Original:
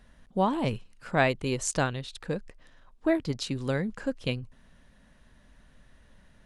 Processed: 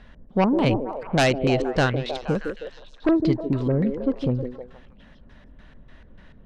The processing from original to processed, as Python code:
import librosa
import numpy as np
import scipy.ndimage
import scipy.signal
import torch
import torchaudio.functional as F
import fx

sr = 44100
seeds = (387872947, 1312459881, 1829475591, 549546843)

y = fx.filter_lfo_lowpass(x, sr, shape='square', hz=3.4, low_hz=410.0, high_hz=3500.0, q=0.94)
y = fx.fold_sine(y, sr, drive_db=9, ceiling_db=-9.5)
y = fx.echo_stepped(y, sr, ms=157, hz=380.0, octaves=0.7, feedback_pct=70, wet_db=-3.5)
y = y * 10.0 ** (-4.0 / 20.0)